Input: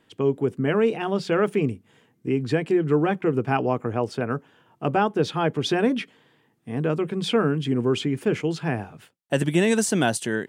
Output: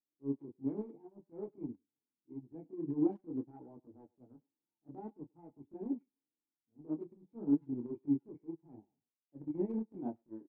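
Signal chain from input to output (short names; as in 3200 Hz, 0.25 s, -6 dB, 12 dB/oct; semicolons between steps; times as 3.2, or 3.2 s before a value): vocal tract filter u; transient shaper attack -10 dB, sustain +2 dB; chorus voices 2, 0.52 Hz, delay 25 ms, depth 4.3 ms; speakerphone echo 0.1 s, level -13 dB; upward expander 2.5:1, over -48 dBFS; gain +3 dB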